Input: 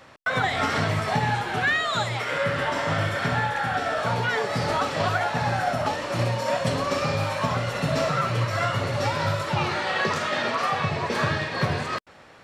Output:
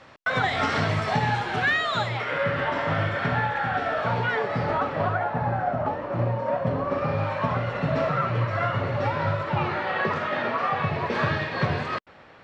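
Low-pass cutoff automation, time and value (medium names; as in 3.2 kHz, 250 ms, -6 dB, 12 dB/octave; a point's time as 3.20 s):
1.73 s 5.7 kHz
2.31 s 2.9 kHz
4.22 s 2.9 kHz
5.40 s 1.2 kHz
6.83 s 1.2 kHz
7.31 s 2.2 kHz
10.61 s 2.2 kHz
11.33 s 3.6 kHz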